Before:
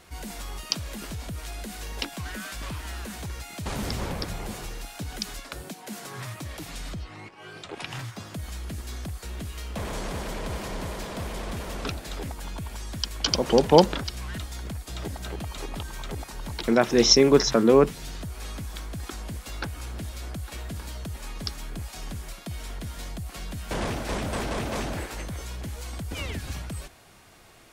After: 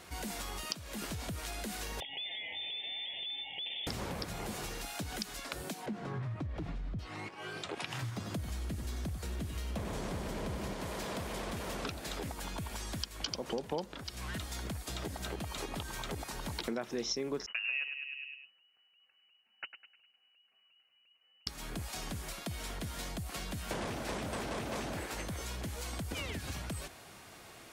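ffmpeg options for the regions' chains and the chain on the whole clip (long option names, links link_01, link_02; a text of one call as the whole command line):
ffmpeg -i in.wav -filter_complex "[0:a]asettb=1/sr,asplit=3[link_01][link_02][link_03];[link_01]atrim=end=2.004[link_04];[link_02]atrim=start=2:end=3.87,asetpts=PTS-STARTPTS,afade=type=in:duration=0.004:curve=qsin,afade=type=out:start_time=1.866:duration=0.004:curve=qsin,lowpass=frequency=3100:width_type=q:width=0.5098,lowpass=frequency=3100:width_type=q:width=0.6013,lowpass=frequency=3100:width_type=q:width=0.9,lowpass=frequency=3100:width_type=q:width=2.563,afreqshift=-3600,acompressor=threshold=-38dB:ratio=4:attack=3.2:release=140:knee=1:detection=peak,asuperstop=centerf=1300:order=12:qfactor=1.3[link_05];[link_03]atrim=start=3.866[link_06];[link_04][link_05]acrossfade=duration=0.004:curve1=hsin:curve2=qsin[link_07];[link_07][link_06]acrossfade=duration=0.004:curve1=qsin:curve2=hsin,asettb=1/sr,asplit=3[link_08][link_09][link_10];[link_08]atrim=end=5.864[link_11];[link_09]atrim=start=5.86:end=6.99,asetpts=PTS-STARTPTS,afade=type=in:duration=0.004:curve=qsin,afade=type=out:start_time=1.126:duration=0.004:curve=qsin,lowpass=frequency=2900:poles=1,aemphasis=mode=reproduction:type=riaa,acompressor=threshold=-26dB:ratio=6:attack=3.2:release=140:knee=1:detection=peak[link_12];[link_10]atrim=start=6.986[link_13];[link_11][link_12]acrossfade=duration=0.004:curve1=hsin:curve2=qsin[link_14];[link_14][link_13]acrossfade=duration=0.004:curve1=qsin:curve2=hsin,asettb=1/sr,asplit=3[link_15][link_16][link_17];[link_15]atrim=end=8.024[link_18];[link_16]atrim=start=8.02:end=10.74,asetpts=PTS-STARTPTS,afade=type=in:duration=0.004:curve=qsin,afade=type=out:start_time=2.716:duration=0.004:curve=qsin,lowshelf=frequency=400:gain=8,aecho=1:1:94:0.335,atrim=end_sample=119952[link_19];[link_17]atrim=start=10.736[link_20];[link_18][link_19]acrossfade=duration=0.004:curve1=hsin:curve2=qsin[link_21];[link_21][link_20]acrossfade=duration=0.004:curve1=qsin:curve2=hsin,asettb=1/sr,asplit=3[link_22][link_23][link_24];[link_22]atrim=end=17.464[link_25];[link_23]atrim=start=17.46:end=21.47,asetpts=PTS-STARTPTS,afade=type=in:duration=0.004:curve=qsin,afade=type=out:start_time=4.006:duration=0.004:curve=qsin,agate=range=-36dB:threshold=-29dB:ratio=16:release=100:detection=peak,asplit=2[link_26][link_27];[link_27]adelay=102,lowpass=frequency=1700:poles=1,volume=-9dB,asplit=2[link_28][link_29];[link_29]adelay=102,lowpass=frequency=1700:poles=1,volume=0.52,asplit=2[link_30][link_31];[link_31]adelay=102,lowpass=frequency=1700:poles=1,volume=0.52,asplit=2[link_32][link_33];[link_33]adelay=102,lowpass=frequency=1700:poles=1,volume=0.52,asplit=2[link_34][link_35];[link_35]adelay=102,lowpass=frequency=1700:poles=1,volume=0.52,asplit=2[link_36][link_37];[link_37]adelay=102,lowpass=frequency=1700:poles=1,volume=0.52[link_38];[link_26][link_28][link_30][link_32][link_34][link_36][link_38]amix=inputs=7:normalize=0,atrim=end_sample=176841,lowpass=frequency=2600:width_type=q:width=0.5098,lowpass=frequency=2600:width_type=q:width=0.6013,lowpass=frequency=2600:width_type=q:width=0.9,lowpass=frequency=2600:width_type=q:width=2.563,afreqshift=-3000[link_39];[link_24]atrim=start=21.466[link_40];[link_25][link_39]acrossfade=duration=0.004:curve1=hsin:curve2=qsin[link_41];[link_41][link_40]acrossfade=duration=0.004:curve1=qsin:curve2=hsin,highpass=frequency=100:poles=1,acompressor=threshold=-37dB:ratio=5,volume=1dB" out.wav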